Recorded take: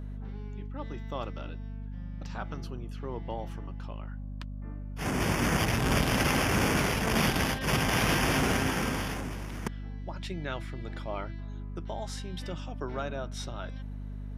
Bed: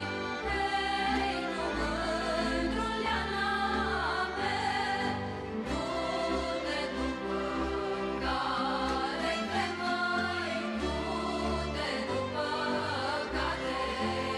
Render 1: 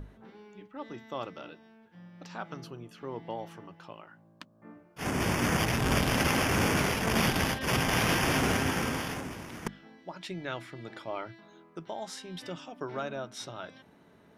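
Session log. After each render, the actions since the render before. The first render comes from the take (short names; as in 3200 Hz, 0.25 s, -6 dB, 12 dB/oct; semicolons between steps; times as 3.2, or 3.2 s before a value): notches 50/100/150/200/250 Hz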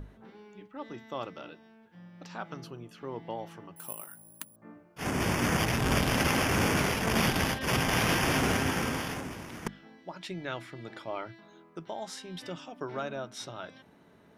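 3.76–4.56 careless resampling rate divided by 4×, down none, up zero stuff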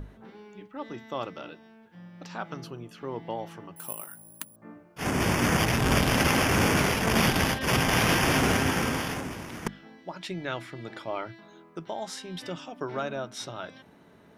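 gain +3.5 dB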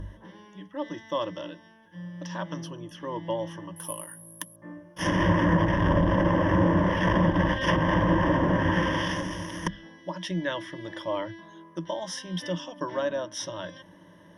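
treble ducked by the level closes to 990 Hz, closed at -19 dBFS; ripple EQ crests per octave 1.2, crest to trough 16 dB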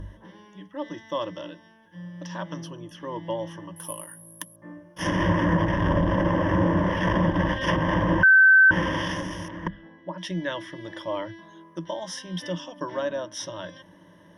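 8.23–8.71 bleep 1540 Hz -11 dBFS; 9.48–10.18 LPF 1900 Hz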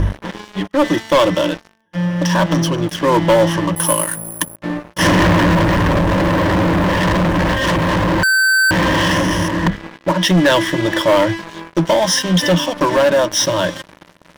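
sample leveller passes 5; vocal rider within 5 dB 2 s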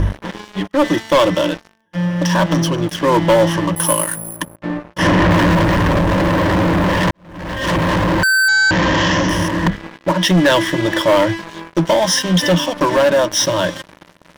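4.36–5.31 LPF 3000 Hz 6 dB/oct; 7.11–7.75 fade in quadratic; 8.48–9.29 careless resampling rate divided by 3×, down none, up filtered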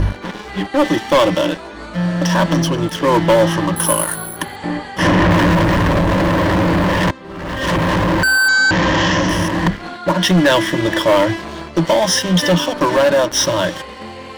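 add bed 0 dB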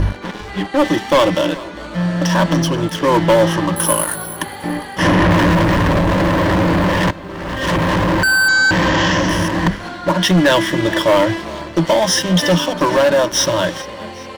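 feedback echo 0.404 s, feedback 48%, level -19.5 dB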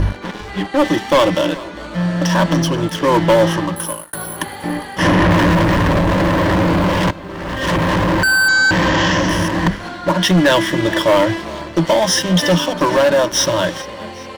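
3.51–4.13 fade out; 6.68–7.2 notch 1800 Hz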